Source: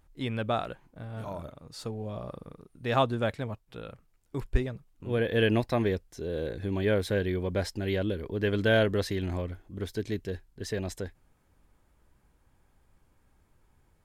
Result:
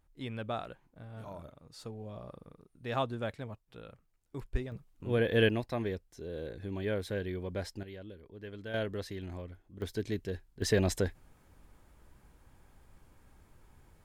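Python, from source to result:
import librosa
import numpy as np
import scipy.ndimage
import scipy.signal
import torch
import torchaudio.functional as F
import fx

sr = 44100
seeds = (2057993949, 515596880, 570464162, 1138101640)

y = fx.gain(x, sr, db=fx.steps((0.0, -7.5), (4.72, -1.0), (5.49, -7.5), (7.83, -17.5), (8.74, -10.0), (9.82, -2.5), (10.62, 5.5)))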